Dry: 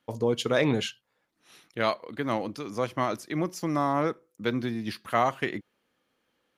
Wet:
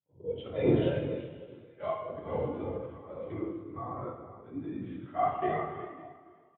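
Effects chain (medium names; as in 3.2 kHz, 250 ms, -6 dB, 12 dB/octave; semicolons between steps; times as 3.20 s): 2.99–5.09 s: compression 6:1, threshold -31 dBFS, peak gain reduction 10.5 dB; delay 375 ms -11 dB; LPC vocoder at 8 kHz whisper; echo whose repeats swap between lows and highs 279 ms, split 1 kHz, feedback 57%, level -12 dB; slow attack 179 ms; harmonic-percussive split percussive -15 dB; high-pass 84 Hz 24 dB/octave; plate-style reverb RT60 1.7 s, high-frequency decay 0.8×, DRR 0 dB; spectral contrast expander 1.5:1; trim +5 dB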